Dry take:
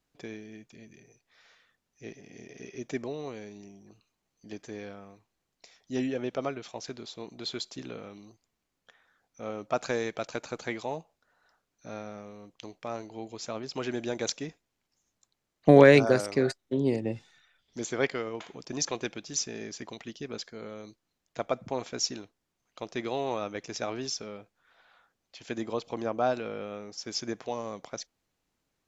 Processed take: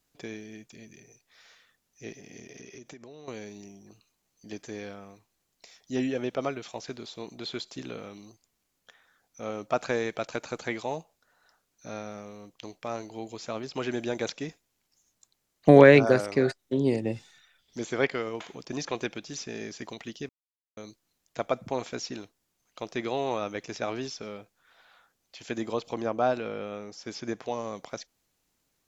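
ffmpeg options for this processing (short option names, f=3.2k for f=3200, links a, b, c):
-filter_complex "[0:a]asettb=1/sr,asplit=3[a][b][c];[a]atrim=end=2.394[d];[b]atrim=start=2.39:end=3.28,asetpts=PTS-STARTPTS,afade=t=in:d=0.004:c=qsin,afade=t=out:st=0.886:d=0.004:c=qsin,acompressor=threshold=-44dB:ratio=16:attack=3.2:release=140:knee=1:detection=peak[e];[c]atrim=start=3.276[f];[d][e]acrossfade=d=0.004:c1=hsin:c2=qsin[g];[g][f]acrossfade=d=0.004:c1=qsin:c2=hsin,asettb=1/sr,asplit=3[h][i][j];[h]atrim=end=25.964[k];[i]atrim=start=25.96:end=27.75,asetpts=PTS-STARTPTS,afade=t=in:d=0.004:c=qsin,afade=t=out:st=1.786:d=0.004:c=qsin,highshelf=f=4.8k:g=-6.5[l];[j]atrim=start=27.746[m];[k][l]acrossfade=d=0.004:c1=hsin:c2=qsin[n];[n][m]acrossfade=d=0.004:c1=qsin:c2=hsin,asplit=3[o][p][q];[o]atrim=end=20.29,asetpts=PTS-STARTPTS,afade=t=out:st=20.286:d=0.004:c=hsin[r];[p]atrim=start=20.29:end=20.77,asetpts=PTS-STARTPTS,volume=0[s];[q]atrim=start=20.77,asetpts=PTS-STARTPTS,afade=t=in:d=0.004:c=hsin[t];[r][s][t]concat=n=3:v=0:a=1,acrossover=split=3400[u][v];[v]acompressor=threshold=-53dB:ratio=4:attack=1:release=60[w];[u][w]amix=inputs=2:normalize=0,aemphasis=mode=production:type=cd,volume=2dB"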